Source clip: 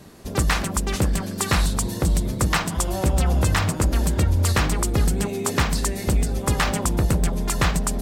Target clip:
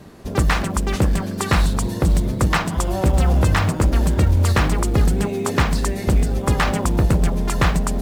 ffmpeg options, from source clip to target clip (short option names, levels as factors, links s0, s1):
-filter_complex "[0:a]highshelf=f=3900:g=-9,asplit=2[s0][s1];[s1]acrusher=bits=5:mode=log:mix=0:aa=0.000001,volume=0.531[s2];[s0][s2]amix=inputs=2:normalize=0"